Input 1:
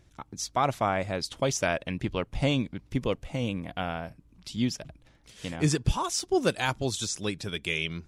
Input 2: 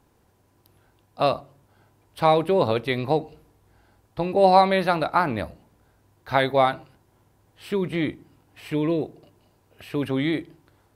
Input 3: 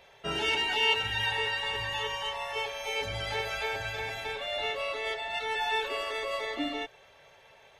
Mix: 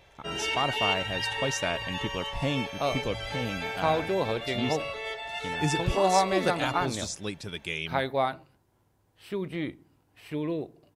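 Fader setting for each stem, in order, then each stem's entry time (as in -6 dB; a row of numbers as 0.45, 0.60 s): -3.5, -7.5, -2.0 dB; 0.00, 1.60, 0.00 s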